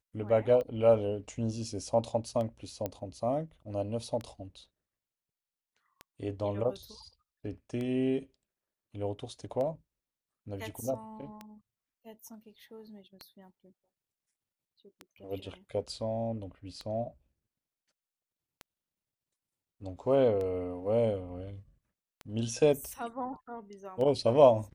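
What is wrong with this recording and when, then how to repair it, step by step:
tick 33 1/3 rpm -26 dBFS
2.86 pop -20 dBFS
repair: de-click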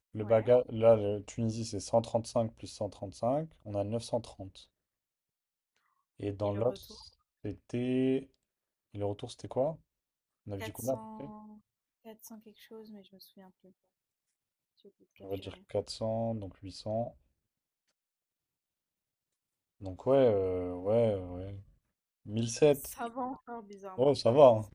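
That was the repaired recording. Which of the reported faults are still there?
none

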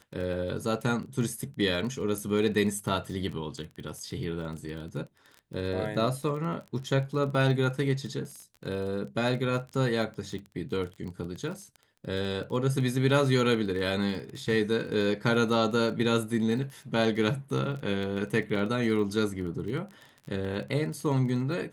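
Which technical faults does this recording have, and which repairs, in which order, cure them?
crackle 20/s -35 dBFS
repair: de-click

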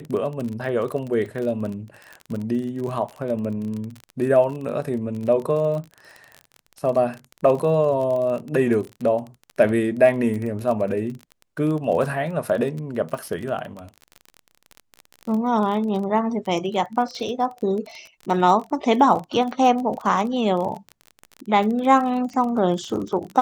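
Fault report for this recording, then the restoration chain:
crackle 29/s -28 dBFS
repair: de-click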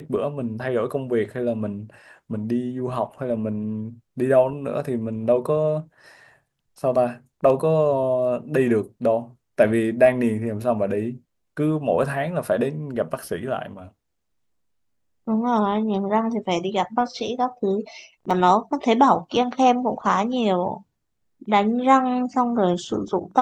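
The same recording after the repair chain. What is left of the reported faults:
none

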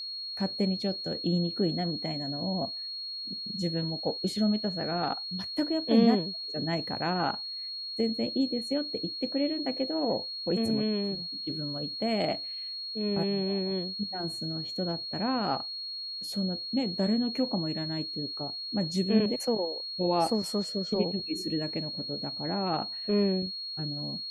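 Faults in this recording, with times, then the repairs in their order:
tone 4300 Hz -35 dBFS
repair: notch 4300 Hz, Q 30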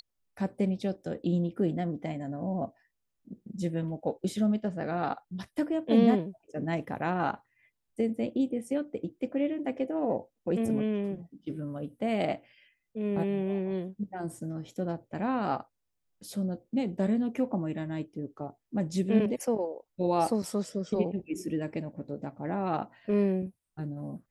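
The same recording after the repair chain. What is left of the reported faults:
none

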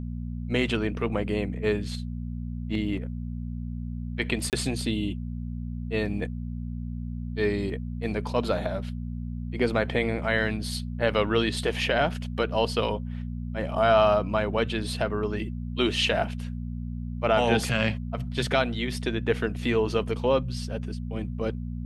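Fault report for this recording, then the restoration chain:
hum 60 Hz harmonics 4 -33 dBFS
4.5–4.53 gap 28 ms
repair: de-hum 60 Hz, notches 4; interpolate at 4.5, 28 ms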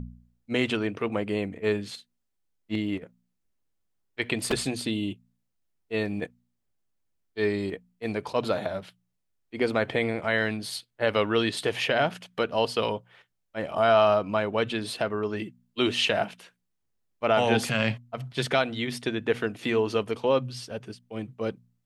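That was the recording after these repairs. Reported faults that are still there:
none

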